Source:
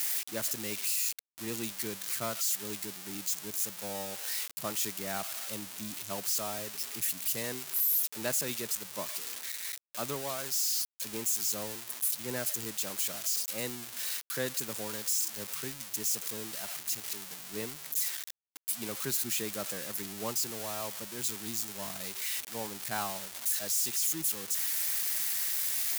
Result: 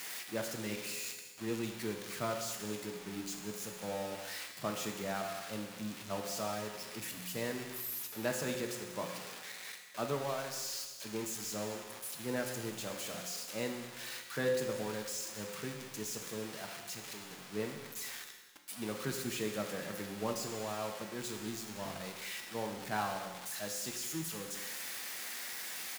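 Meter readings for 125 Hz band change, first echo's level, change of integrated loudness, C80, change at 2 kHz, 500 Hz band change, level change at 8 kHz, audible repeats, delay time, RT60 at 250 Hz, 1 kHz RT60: +1.5 dB, -16.5 dB, -7.5 dB, 7.0 dB, -1.0 dB, +2.5 dB, -9.5 dB, 1, 191 ms, 1.3 s, 1.3 s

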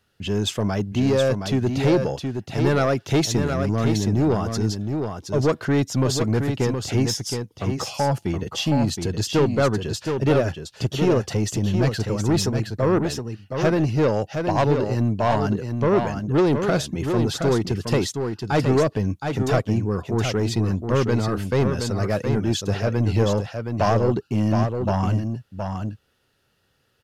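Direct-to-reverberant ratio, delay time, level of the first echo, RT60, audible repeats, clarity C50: no reverb, 719 ms, -6.0 dB, no reverb, 1, no reverb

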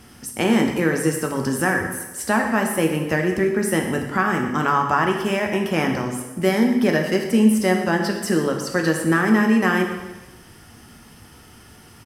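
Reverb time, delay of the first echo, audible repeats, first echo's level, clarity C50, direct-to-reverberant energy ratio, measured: 1.1 s, 120 ms, 1, -14.5 dB, 5.5 dB, 2.0 dB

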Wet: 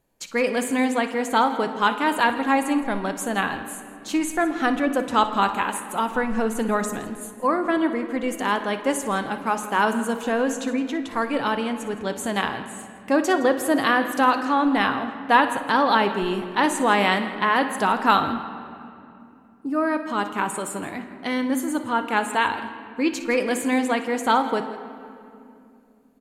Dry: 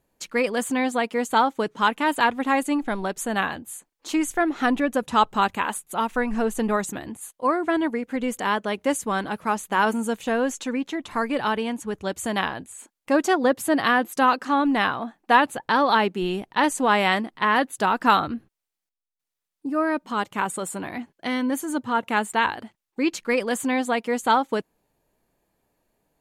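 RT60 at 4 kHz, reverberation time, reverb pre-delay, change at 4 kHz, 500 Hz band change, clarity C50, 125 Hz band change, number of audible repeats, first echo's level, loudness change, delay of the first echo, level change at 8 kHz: 1.7 s, 2.6 s, 6 ms, +0.5 dB, +1.0 dB, 8.5 dB, +1.0 dB, 2, -15.0 dB, +0.5 dB, 59 ms, +0.5 dB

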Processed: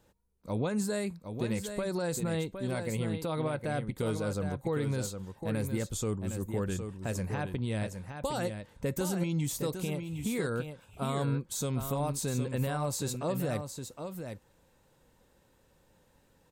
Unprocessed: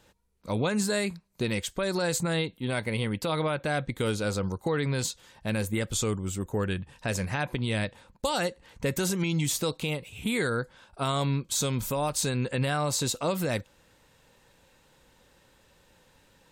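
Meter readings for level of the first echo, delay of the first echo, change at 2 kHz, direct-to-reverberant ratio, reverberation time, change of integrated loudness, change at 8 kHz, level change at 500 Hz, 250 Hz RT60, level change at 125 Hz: -7.5 dB, 762 ms, -9.0 dB, no reverb, no reverb, -4.5 dB, -6.5 dB, -3.5 dB, no reverb, -2.5 dB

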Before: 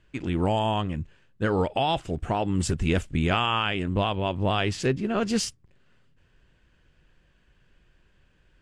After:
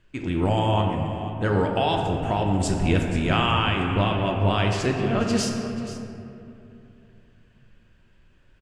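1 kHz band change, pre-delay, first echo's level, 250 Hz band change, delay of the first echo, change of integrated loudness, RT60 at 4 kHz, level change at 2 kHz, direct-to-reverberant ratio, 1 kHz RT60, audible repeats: +2.5 dB, 3 ms, -14.0 dB, +3.0 dB, 484 ms, +2.5 dB, 1.5 s, +2.5 dB, 1.0 dB, 2.5 s, 1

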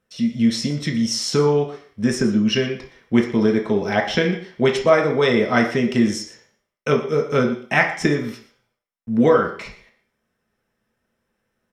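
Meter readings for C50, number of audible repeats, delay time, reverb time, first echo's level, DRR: 8.0 dB, 1, 118 ms, 0.50 s, -15.5 dB, 0.5 dB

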